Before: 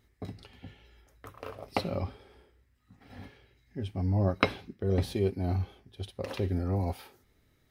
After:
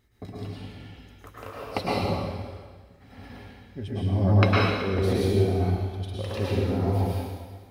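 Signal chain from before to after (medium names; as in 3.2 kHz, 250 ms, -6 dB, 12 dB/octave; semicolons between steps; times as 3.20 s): plate-style reverb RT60 1.5 s, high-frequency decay 0.95×, pre-delay 95 ms, DRR -6 dB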